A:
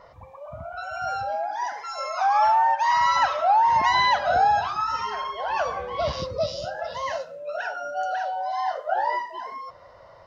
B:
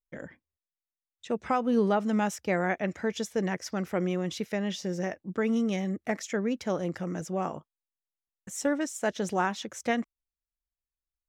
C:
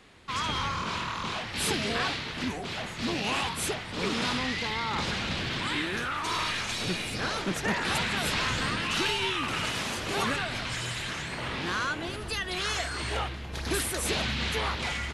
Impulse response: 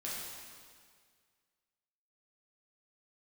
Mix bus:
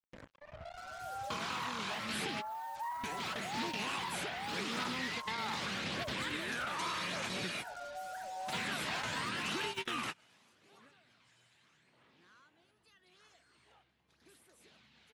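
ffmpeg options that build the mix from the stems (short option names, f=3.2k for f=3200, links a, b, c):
-filter_complex "[0:a]lowpass=1.5k,volume=-13dB[a];[1:a]volume=-13.5dB,asplit=3[b][c][d];[b]atrim=end=2.32,asetpts=PTS-STARTPTS,afade=t=out:st=2.316:d=0.004:c=hsin[e];[c]atrim=start=2.32:end=2.95,asetpts=PTS-STARTPTS,volume=0[f];[d]atrim=start=2.95,asetpts=PTS-STARTPTS,afade=t=in:d=0.004:c=hsin[g];[e][f][g]concat=n=3:v=0:a=1,asplit=2[h][i];[2:a]highpass=150,adelay=550,volume=-1.5dB[j];[i]apad=whole_len=691560[k];[j][k]sidechaingate=range=-33dB:threshold=-54dB:ratio=16:detection=peak[l];[a][h]amix=inputs=2:normalize=0,acrusher=bits=7:mix=0:aa=0.5,alimiter=level_in=9.5dB:limit=-24dB:level=0:latency=1:release=14,volume=-9.5dB,volume=0dB[m];[l][m]amix=inputs=2:normalize=0,acrossover=split=1200|2400|5200[n][o][p][q];[n]acompressor=threshold=-42dB:ratio=4[r];[o]acompressor=threshold=-42dB:ratio=4[s];[p]acompressor=threshold=-48dB:ratio=4[t];[q]acompressor=threshold=-50dB:ratio=4[u];[r][s][t][u]amix=inputs=4:normalize=0,aphaser=in_gain=1:out_gain=1:delay=1.4:decay=0.25:speed=0.83:type=triangular"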